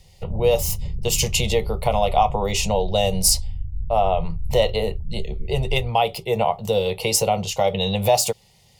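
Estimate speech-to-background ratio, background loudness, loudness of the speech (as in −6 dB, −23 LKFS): 11.0 dB, −32.5 LKFS, −21.5 LKFS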